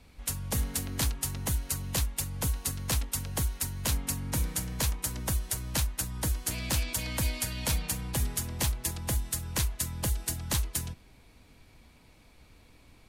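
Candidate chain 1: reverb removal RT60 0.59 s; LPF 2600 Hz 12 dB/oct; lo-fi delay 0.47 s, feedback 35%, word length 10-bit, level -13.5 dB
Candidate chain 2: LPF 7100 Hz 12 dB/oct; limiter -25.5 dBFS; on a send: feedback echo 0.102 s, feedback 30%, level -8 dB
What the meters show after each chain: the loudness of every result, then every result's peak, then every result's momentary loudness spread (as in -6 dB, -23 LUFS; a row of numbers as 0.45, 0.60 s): -36.0, -36.0 LUFS; -19.5, -23.5 dBFS; 4, 2 LU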